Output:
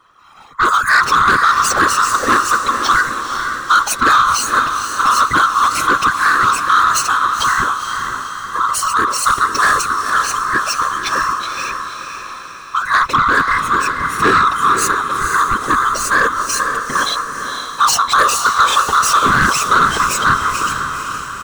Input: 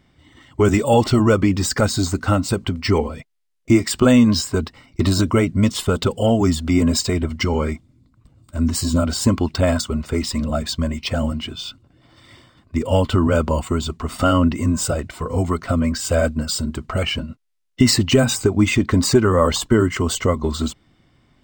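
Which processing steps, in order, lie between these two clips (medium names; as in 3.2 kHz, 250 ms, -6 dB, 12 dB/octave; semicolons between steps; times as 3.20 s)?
split-band scrambler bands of 1 kHz; peaking EQ 3.6 kHz -4.5 dB 1.6 oct; comb 6 ms, depth 74%; whisper effect; saturation -11.5 dBFS, distortion -12 dB; echo that smears into a reverb 493 ms, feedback 53%, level -6.5 dB; trim +5 dB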